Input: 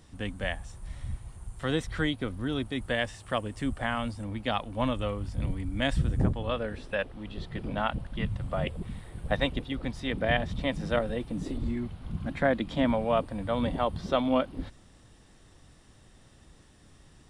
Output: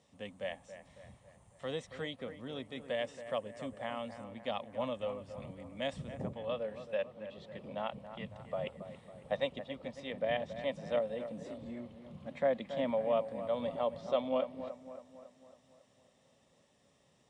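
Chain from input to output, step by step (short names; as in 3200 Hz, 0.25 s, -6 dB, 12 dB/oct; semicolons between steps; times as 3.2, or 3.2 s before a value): speaker cabinet 190–8300 Hz, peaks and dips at 320 Hz -10 dB, 560 Hz +8 dB, 1500 Hz -10 dB, 4600 Hz -4 dB; on a send: analogue delay 0.276 s, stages 4096, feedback 53%, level -11.5 dB; on the sum: gain -8.5 dB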